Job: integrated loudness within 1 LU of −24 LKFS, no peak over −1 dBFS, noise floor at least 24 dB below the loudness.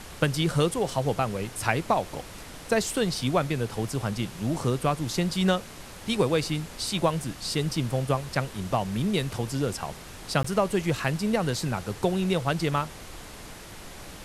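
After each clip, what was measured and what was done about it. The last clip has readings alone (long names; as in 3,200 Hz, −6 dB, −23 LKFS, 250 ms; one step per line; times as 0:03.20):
number of dropouts 1; longest dropout 14 ms; background noise floor −43 dBFS; target noise floor −52 dBFS; integrated loudness −27.5 LKFS; sample peak −6.5 dBFS; target loudness −24.0 LKFS
→ repair the gap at 0:10.43, 14 ms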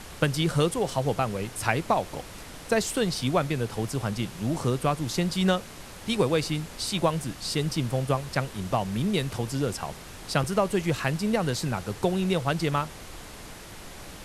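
number of dropouts 0; background noise floor −43 dBFS; target noise floor −52 dBFS
→ noise reduction from a noise print 9 dB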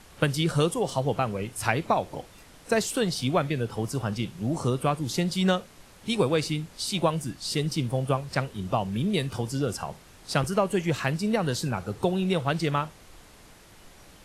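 background noise floor −52 dBFS; integrated loudness −27.5 LKFS; sample peak −6.5 dBFS; target loudness −24.0 LKFS
→ level +3.5 dB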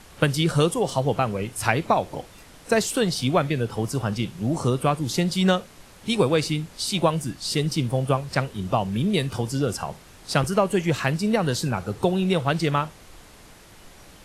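integrated loudness −24.0 LKFS; sample peak −3.0 dBFS; background noise floor −49 dBFS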